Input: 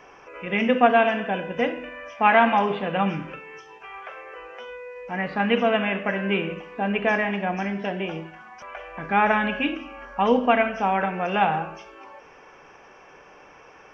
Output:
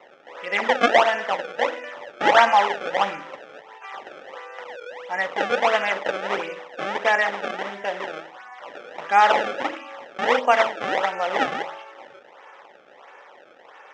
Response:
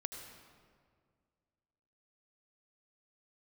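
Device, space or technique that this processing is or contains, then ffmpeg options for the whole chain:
circuit-bent sampling toy: -af "acrusher=samples=26:mix=1:aa=0.000001:lfo=1:lforange=41.6:lforate=1.5,highpass=470,equalizer=f=550:t=q:w=4:g=6,equalizer=f=860:t=q:w=4:g=7,equalizer=f=1300:t=q:w=4:g=5,equalizer=f=1900:t=q:w=4:g=8,equalizer=f=3100:t=q:w=4:g=4,equalizer=f=4400:t=q:w=4:g=-10,lowpass=f=5200:w=0.5412,lowpass=f=5200:w=1.3066,volume=0.891"

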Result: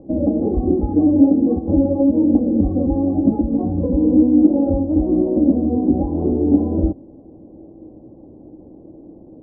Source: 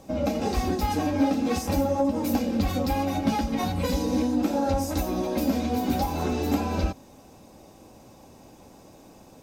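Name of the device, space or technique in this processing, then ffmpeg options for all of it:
under water: -af "lowpass=f=580:w=0.5412,lowpass=f=580:w=1.3066,equalizer=f=320:t=o:w=0.36:g=11,volume=2"

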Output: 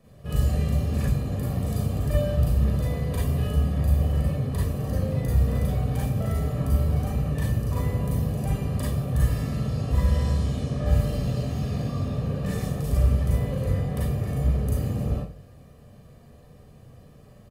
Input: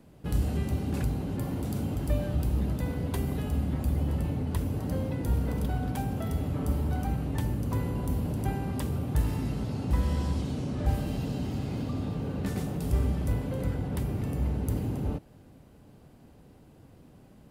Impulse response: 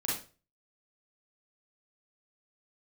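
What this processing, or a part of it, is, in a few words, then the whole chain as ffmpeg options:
microphone above a desk: -filter_complex "[0:a]aecho=1:1:1.7:0.72[s0];[1:a]atrim=start_sample=2205[s1];[s0][s1]afir=irnorm=-1:irlink=0,volume=0.75"

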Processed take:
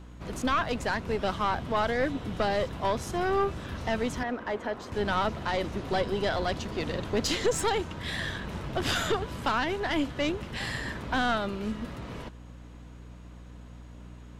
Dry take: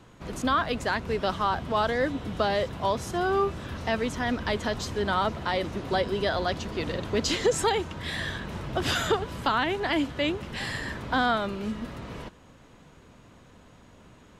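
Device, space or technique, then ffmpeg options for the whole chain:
valve amplifier with mains hum: -filter_complex "[0:a]aeval=exprs='(tanh(8.91*val(0)+0.5)-tanh(0.5))/8.91':c=same,aeval=exprs='val(0)+0.00501*(sin(2*PI*60*n/s)+sin(2*PI*2*60*n/s)/2+sin(2*PI*3*60*n/s)/3+sin(2*PI*4*60*n/s)/4+sin(2*PI*5*60*n/s)/5)':c=same,asettb=1/sr,asplit=3[s0][s1][s2];[s0]atrim=end=4.234[s3];[s1]atrim=start=4.23:end=4.92,asetpts=PTS-STARTPTS,afade=t=in:d=0.004:c=qsin,afade=t=out:st=0.686:d=0.004:c=qsin,acrossover=split=250 2100:gain=0.178 1 0.2[s4][s5][s6];[s4][s5][s6]amix=inputs=3:normalize=0[s7];[s2]atrim=start=4.916[s8];[s3][s7]acrossfade=d=0.004:c1=hsin:c2=qsin[s9];[s9][s8]acrossfade=d=0.004:c1=qsin:c2=hsin,volume=1.12"

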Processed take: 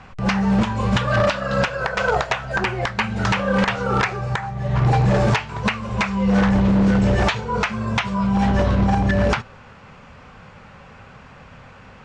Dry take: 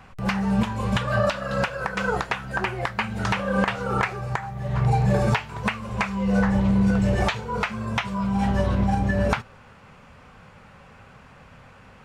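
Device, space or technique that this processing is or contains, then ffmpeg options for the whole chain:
synthesiser wavefolder: -filter_complex "[0:a]aeval=exprs='0.158*(abs(mod(val(0)/0.158+3,4)-2)-1)':c=same,lowpass=f=7300:w=0.5412,lowpass=f=7300:w=1.3066,asettb=1/sr,asplit=3[s0][s1][s2];[s0]atrim=end=1.844[s3];[s1]atrim=start=1.84:end=2.56,asetpts=PTS-STARTPTS,afade=t=in:d=0.004:c=qsin,afade=t=out:st=0.716:d=0.004:c=qsin,equalizer=f=200:t=o:w=0.33:g=-9,equalizer=f=315:t=o:w=0.33:g=-11,equalizer=f=630:t=o:w=0.33:g=11[s4];[s2]atrim=start=2.556[s5];[s3][s4]acrossfade=d=0.004:c1=hsin:c2=qsin[s6];[s6][s5]acrossfade=d=0.004:c1=qsin:c2=hsin,volume=1.78"

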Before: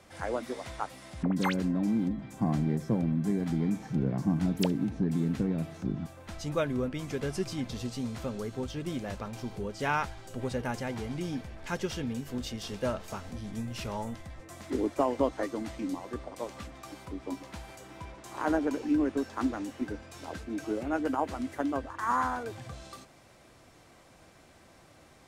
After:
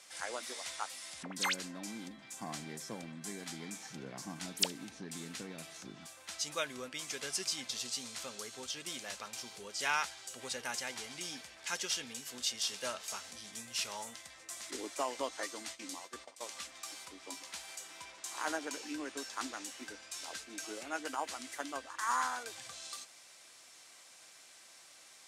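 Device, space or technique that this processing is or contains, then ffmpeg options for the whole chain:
piezo pickup straight into a mixer: -filter_complex "[0:a]asettb=1/sr,asplit=3[s0][s1][s2];[s0]atrim=end=14.714[s3];[s1]atrim=start=14.71:end=16.47,asetpts=PTS-STARTPTS,afade=t=in:d=0.004:c=qsin,afade=t=out:st=1.756:d=0.004:c=qsin,agate=range=0.251:threshold=0.01:ratio=16:detection=peak[s4];[s2]atrim=start=16.466[s5];[s3][s4]acrossfade=d=0.004:c1=hsin:c2=qsin[s6];[s6][s5]acrossfade=d=0.004:c1=qsin:c2=hsin,lowpass=8400,aderivative,volume=3.76"

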